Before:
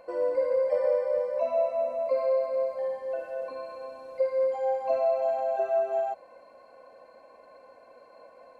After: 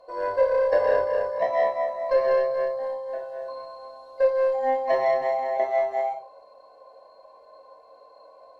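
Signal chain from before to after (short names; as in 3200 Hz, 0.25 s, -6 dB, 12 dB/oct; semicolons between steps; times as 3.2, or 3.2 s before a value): ten-band EQ 125 Hz -4 dB, 250 Hz -10 dB, 500 Hz +7 dB, 1000 Hz +5 dB, 2000 Hz -10 dB, 4000 Hz +11 dB; added harmonics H 3 -15 dB, 7 -37 dB, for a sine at -10 dBFS; reverb RT60 0.40 s, pre-delay 3 ms, DRR -3.5 dB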